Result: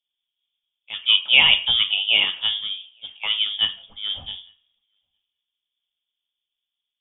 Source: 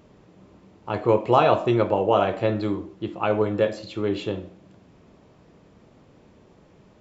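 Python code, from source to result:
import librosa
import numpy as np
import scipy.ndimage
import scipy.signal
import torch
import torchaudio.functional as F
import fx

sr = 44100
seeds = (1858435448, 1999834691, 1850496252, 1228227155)

y = fx.low_shelf(x, sr, hz=79.0, db=8.5)
y = fx.echo_feedback(y, sr, ms=863, feedback_pct=17, wet_db=-23.0)
y = fx.freq_invert(y, sr, carrier_hz=3500)
y = fx.band_widen(y, sr, depth_pct=100)
y = y * 10.0 ** (-2.5 / 20.0)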